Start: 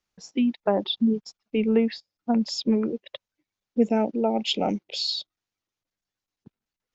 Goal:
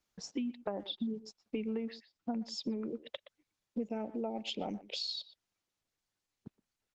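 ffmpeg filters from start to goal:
-filter_complex "[0:a]asplit=2[a][b];[b]adelay=120,highpass=300,lowpass=3.4k,asoftclip=type=hard:threshold=-18dB,volume=-18dB[c];[a][c]amix=inputs=2:normalize=0,acompressor=threshold=-37dB:ratio=5,volume=1dB" -ar 48000 -c:a libopus -b:a 20k

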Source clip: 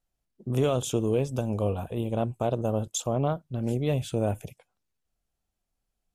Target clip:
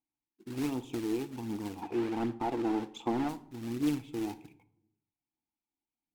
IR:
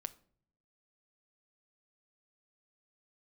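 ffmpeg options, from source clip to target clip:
-filter_complex "[0:a]asplit=3[a][b][c];[a]bandpass=f=300:t=q:w=8,volume=0dB[d];[b]bandpass=f=870:t=q:w=8,volume=-6dB[e];[c]bandpass=f=2.24k:t=q:w=8,volume=-9dB[f];[d][e][f]amix=inputs=3:normalize=0,acrusher=bits=3:mode=log:mix=0:aa=0.000001,asettb=1/sr,asplit=3[g][h][i];[g]atrim=end=1.824[j];[h]atrim=start=1.82:end=3.29,asetpts=PTS-STARTPTS,afade=t=in:d=0.004:c=qsin,afade=t=out:st=1.466:d=0.004:c=qsin,asplit=2[k][l];[l]highpass=f=720:p=1,volume=23dB,asoftclip=type=tanh:threshold=-25.5dB[m];[k][m]amix=inputs=2:normalize=0,lowpass=f=1.1k:p=1,volume=-6dB[n];[i]atrim=start=3.286[o];[j][n]acrossfade=d=0.004:c1=hsin:c2=qsin[p];[p][o]acrossfade=d=0.004:c1=qsin:c2=hsin,aphaser=in_gain=1:out_gain=1:delay=3:decay=0.36:speed=1.3:type=triangular[q];[1:a]atrim=start_sample=2205,asetrate=34398,aresample=44100[r];[q][r]afir=irnorm=-1:irlink=0,volume=5.5dB"

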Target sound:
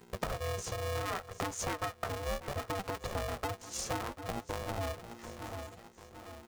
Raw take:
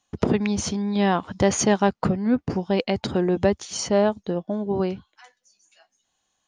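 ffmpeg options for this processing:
-filter_complex "[0:a]aeval=exprs='val(0)+0.00794*(sin(2*PI*60*n/s)+sin(2*PI*2*60*n/s)/2+sin(2*PI*3*60*n/s)/3+sin(2*PI*4*60*n/s)/4+sin(2*PI*5*60*n/s)/5)':c=same,asettb=1/sr,asplit=3[a][b][c];[a]atrim=end=4.014[d];[b]atrim=start=4.01:end=4.78,asetpts=PTS-STARTPTS,afade=t=in:d=0.004:c=qsin,afade=t=out:st=0.766:d=0.004:c=qsin,tremolo=f=110:d=0.857[e];[c]atrim=start=4.776[f];[d][e]acrossfade=d=0.004:c1=hsin:c2=qsin[g];[g][f]acrossfade=d=0.004:c1=qsin:c2=hsin,afwtdn=0.0447,equalizer=f=1k:t=o:w=0.33:g=11,equalizer=f=1.6k:t=o:w=0.33:g=11,equalizer=f=8k:t=o:w=0.33:g=11,flanger=delay=8.5:depth=8.9:regen=31:speed=0.67:shape=triangular,highpass=f=290:p=1,asplit=2[h][i];[i]alimiter=limit=-24dB:level=0:latency=1:release=17,volume=0dB[j];[h][j]amix=inputs=2:normalize=0,aemphasis=mode=production:type=50fm,asplit=2[k][l];[l]aecho=0:1:741|1482|2223|2964:0.133|0.0587|0.0258|0.0114[m];[k][m]amix=inputs=2:normalize=0,acompressor=threshold=-34dB:ratio=6,aeval=exprs='val(0)*sgn(sin(2*PI*290*n/s))':c=same"

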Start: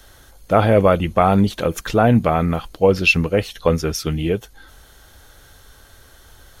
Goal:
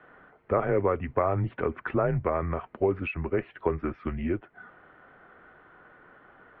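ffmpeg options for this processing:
-af "lowshelf=f=410:g=-4.5,acompressor=threshold=-28dB:ratio=2,highpass=f=160:t=q:w=0.5412,highpass=f=160:t=q:w=1.307,lowpass=f=2.2k:t=q:w=0.5176,lowpass=f=2.2k:t=q:w=0.7071,lowpass=f=2.2k:t=q:w=1.932,afreqshift=-91"

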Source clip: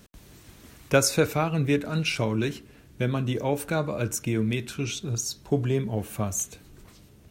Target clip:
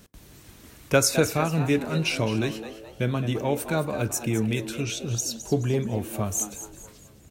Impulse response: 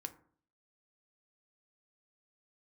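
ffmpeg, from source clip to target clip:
-filter_complex "[0:a]asplit=5[a][b][c][d][e];[b]adelay=213,afreqshift=110,volume=-12dB[f];[c]adelay=426,afreqshift=220,volume=-20dB[g];[d]adelay=639,afreqshift=330,volume=-27.9dB[h];[e]adelay=852,afreqshift=440,volume=-35.9dB[i];[a][f][g][h][i]amix=inputs=5:normalize=0,asplit=2[j][k];[1:a]atrim=start_sample=2205,highshelf=f=5.2k:g=11[l];[k][l]afir=irnorm=-1:irlink=0,volume=-11dB[m];[j][m]amix=inputs=2:normalize=0,volume=-1dB"

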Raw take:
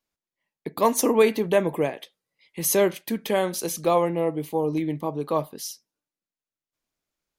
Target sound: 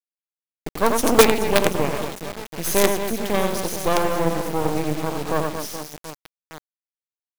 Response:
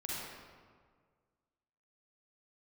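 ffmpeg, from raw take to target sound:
-af "highshelf=f=11k:g=-3.5,aecho=1:1:90|225|427.5|731.2|1187:0.631|0.398|0.251|0.158|0.1,acrusher=bits=3:dc=4:mix=0:aa=0.000001,volume=3.5dB"

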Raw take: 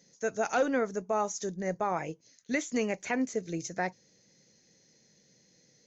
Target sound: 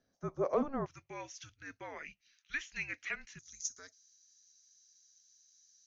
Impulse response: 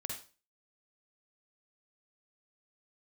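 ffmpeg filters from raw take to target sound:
-af "asetnsamples=n=441:p=0,asendcmd='0.86 bandpass f 2800;3.39 bandpass f 7000',bandpass=f=910:t=q:w=4:csg=0,afreqshift=-280,volume=5.5dB"

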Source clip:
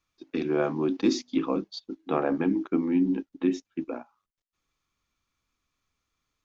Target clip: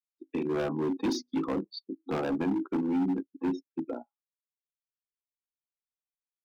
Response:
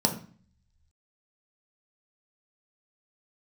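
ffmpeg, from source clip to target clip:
-filter_complex "[0:a]afftdn=nr=34:nf=-37,acrossover=split=180[a][b];[b]volume=26dB,asoftclip=hard,volume=-26dB[c];[a][c]amix=inputs=2:normalize=0,volume=-1dB"

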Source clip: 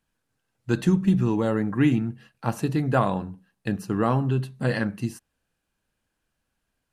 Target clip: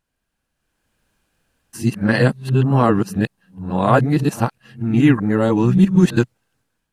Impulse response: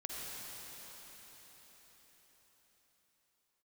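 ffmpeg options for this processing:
-af "areverse,dynaudnorm=f=550:g=3:m=12dB"

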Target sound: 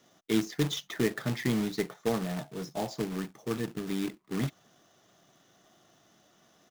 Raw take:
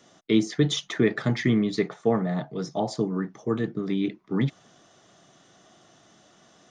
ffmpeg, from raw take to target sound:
-af "aresample=16000,aresample=44100,acrusher=bits=2:mode=log:mix=0:aa=0.000001,volume=-7dB"

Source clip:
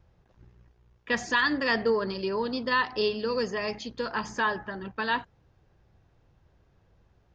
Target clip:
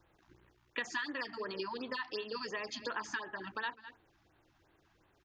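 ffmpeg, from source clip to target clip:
-filter_complex "[0:a]lowshelf=f=250:g=-10,acrossover=split=820[a][b];[a]bandreject=f=56.08:t=h:w=4,bandreject=f=112.16:t=h:w=4,bandreject=f=168.24:t=h:w=4,bandreject=f=224.32:t=h:w=4,bandreject=f=280.4:t=h:w=4,bandreject=f=336.48:t=h:w=4,bandreject=f=392.56:t=h:w=4,bandreject=f=448.64:t=h:w=4,bandreject=f=504.72:t=h:w=4,bandreject=f=560.8:t=h:w=4,bandreject=f=616.88:t=h:w=4,bandreject=f=672.96:t=h:w=4,bandreject=f=729.04:t=h:w=4[c];[b]acontrast=70[d];[c][d]amix=inputs=2:normalize=0,equalizer=f=320:w=3.3:g=11,asplit=2[e][f];[f]adelay=291.5,volume=-20dB,highshelf=f=4k:g=-6.56[g];[e][g]amix=inputs=2:normalize=0,atempo=1.4,acompressor=threshold=-33dB:ratio=6,afftfilt=real='re*(1-between(b*sr/1024,420*pow(6600/420,0.5+0.5*sin(2*PI*2.8*pts/sr))/1.41,420*pow(6600/420,0.5+0.5*sin(2*PI*2.8*pts/sr))*1.41))':imag='im*(1-between(b*sr/1024,420*pow(6600/420,0.5+0.5*sin(2*PI*2.8*pts/sr))/1.41,420*pow(6600/420,0.5+0.5*sin(2*PI*2.8*pts/sr))*1.41))':win_size=1024:overlap=0.75,volume=-2.5dB"

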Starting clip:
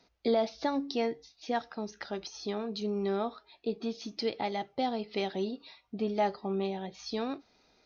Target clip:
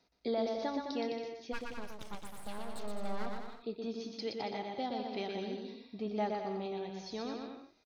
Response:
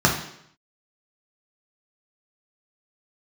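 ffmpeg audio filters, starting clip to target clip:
-filter_complex "[0:a]asplit=3[a][b][c];[a]afade=t=out:st=1.52:d=0.02[d];[b]aeval=exprs='abs(val(0))':c=same,afade=t=in:st=1.52:d=0.02,afade=t=out:st=3.25:d=0.02[e];[c]afade=t=in:st=3.25:d=0.02[f];[d][e][f]amix=inputs=3:normalize=0,aecho=1:1:120|210|277.5|328.1|366.1:0.631|0.398|0.251|0.158|0.1,volume=-7dB"

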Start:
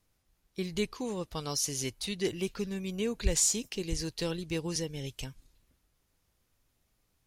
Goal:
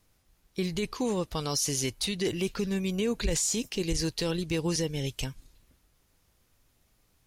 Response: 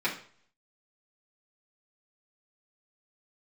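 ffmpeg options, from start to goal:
-af "alimiter=level_in=1.5dB:limit=-24dB:level=0:latency=1:release=29,volume=-1.5dB,volume=6.5dB"

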